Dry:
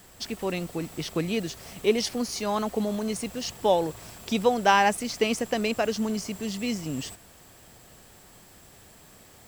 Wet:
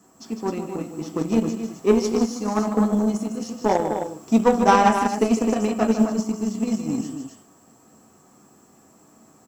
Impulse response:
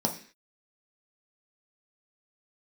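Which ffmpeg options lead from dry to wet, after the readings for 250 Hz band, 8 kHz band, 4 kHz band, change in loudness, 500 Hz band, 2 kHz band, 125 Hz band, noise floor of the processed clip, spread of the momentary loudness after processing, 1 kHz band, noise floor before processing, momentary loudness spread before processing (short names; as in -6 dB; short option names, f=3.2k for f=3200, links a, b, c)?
+9.0 dB, 0.0 dB, -5.5 dB, +5.0 dB, +4.0 dB, -1.5 dB, +5.0 dB, -55 dBFS, 13 LU, +5.0 dB, -53 dBFS, 12 LU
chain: -filter_complex "[0:a]aecho=1:1:154.5|262.4:0.447|0.501[a];[1:a]atrim=start_sample=2205,asetrate=57330,aresample=44100[b];[a][b]afir=irnorm=-1:irlink=0,aeval=exprs='1.26*(cos(1*acos(clip(val(0)/1.26,-1,1)))-cos(1*PI/2))+0.141*(cos(3*acos(clip(val(0)/1.26,-1,1)))-cos(3*PI/2))+0.0447*(cos(7*acos(clip(val(0)/1.26,-1,1)))-cos(7*PI/2))':c=same,volume=-4dB"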